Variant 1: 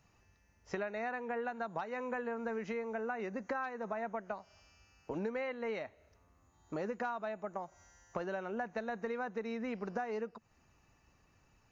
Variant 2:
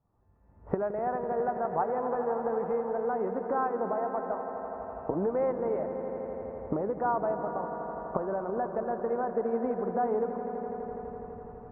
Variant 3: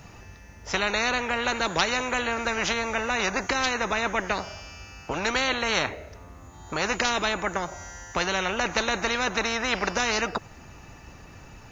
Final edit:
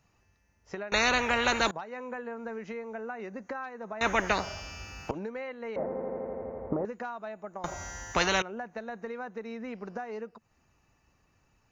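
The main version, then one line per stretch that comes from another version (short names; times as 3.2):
1
0.92–1.71 from 3
4.01–5.11 from 3
5.76–6.85 from 2
7.64–8.42 from 3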